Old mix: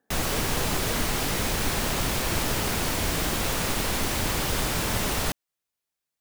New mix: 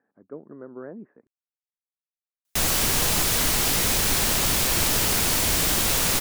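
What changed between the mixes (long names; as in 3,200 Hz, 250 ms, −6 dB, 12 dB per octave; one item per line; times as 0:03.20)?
background: entry +2.45 s
master: add high-shelf EQ 3,100 Hz +9.5 dB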